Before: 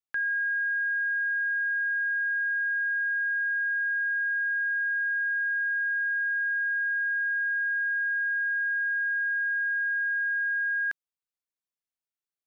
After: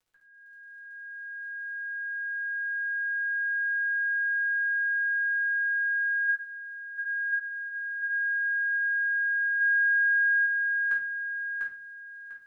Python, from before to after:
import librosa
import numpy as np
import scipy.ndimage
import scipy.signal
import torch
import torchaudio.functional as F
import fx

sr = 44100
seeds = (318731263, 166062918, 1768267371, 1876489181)

p1 = fx.fade_in_head(x, sr, length_s=3.62)
p2 = fx.highpass(p1, sr, hz=1500.0, slope=24, at=(6.28, 7.32), fade=0.02)
p3 = fx.dmg_crackle(p2, sr, seeds[0], per_s=41.0, level_db=-57.0)
p4 = p3 + fx.echo_feedback(p3, sr, ms=697, feedback_pct=28, wet_db=-3.0, dry=0)
p5 = fx.room_shoebox(p4, sr, seeds[1], volume_m3=31.0, walls='mixed', distance_m=1.0)
p6 = fx.env_flatten(p5, sr, amount_pct=100, at=(9.6, 10.45), fade=0.02)
y = p6 * librosa.db_to_amplitude(-5.0)